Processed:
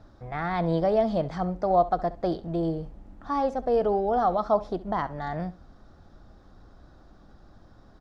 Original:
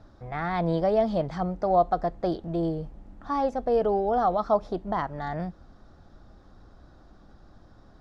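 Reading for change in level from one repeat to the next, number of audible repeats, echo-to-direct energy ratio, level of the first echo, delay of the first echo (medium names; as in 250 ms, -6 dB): -15.5 dB, 2, -17.5 dB, -17.5 dB, 67 ms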